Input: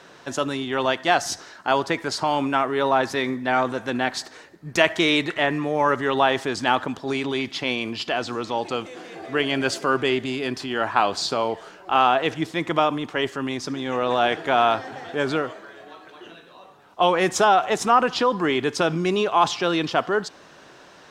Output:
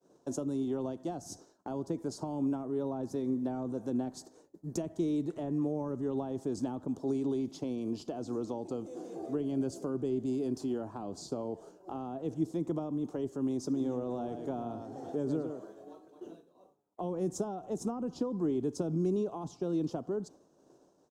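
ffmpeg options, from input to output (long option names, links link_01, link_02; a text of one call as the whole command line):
ffmpeg -i in.wav -filter_complex "[0:a]asettb=1/sr,asplit=3[link_01][link_02][link_03];[link_01]atrim=end=13.694[link_04];[link_02]atrim=start=13.69:end=15.8,asetpts=PTS-STARTPTS,afade=type=in:duration=0.004:curve=qsin,afade=type=out:start_time=2.106:duration=0.004:curve=qsin,aecho=1:1:110:0.376,atrim=end_sample=93051[link_05];[link_03]atrim=start=15.796[link_06];[link_04][link_05]acrossfade=duration=0.004:curve1=hsin:curve2=qsin[link_07];[link_07][link_06]acrossfade=duration=0.004:curve1=qsin:curve2=hsin,acrossover=split=230[link_08][link_09];[link_09]acompressor=threshold=-30dB:ratio=10[link_10];[link_08][link_10]amix=inputs=2:normalize=0,firequalizer=gain_entry='entry(110,0);entry(290,7);entry(1900,-23);entry(6400,0)':delay=0.05:min_phase=1,agate=range=-33dB:threshold=-39dB:ratio=3:detection=peak,volume=-6.5dB" out.wav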